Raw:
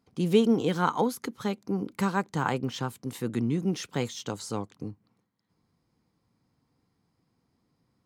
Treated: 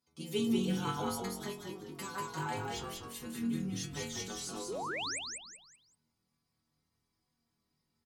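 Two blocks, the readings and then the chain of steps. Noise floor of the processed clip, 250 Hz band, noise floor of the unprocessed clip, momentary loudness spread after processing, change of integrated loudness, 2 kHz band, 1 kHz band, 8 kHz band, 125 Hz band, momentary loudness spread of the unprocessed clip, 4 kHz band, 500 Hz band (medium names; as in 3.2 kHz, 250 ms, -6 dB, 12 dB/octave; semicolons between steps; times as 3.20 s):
-83 dBFS, -8.5 dB, -76 dBFS, 11 LU, -8.5 dB, -5.0 dB, -8.0 dB, +1.5 dB, -9.5 dB, 11 LU, -1.5 dB, -10.5 dB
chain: treble shelf 2.3 kHz +11 dB; inharmonic resonator 75 Hz, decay 0.74 s, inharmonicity 0.008; painted sound rise, 4.68–5.19 s, 330–9100 Hz -39 dBFS; on a send: frequency-shifting echo 191 ms, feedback 34%, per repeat -44 Hz, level -3.5 dB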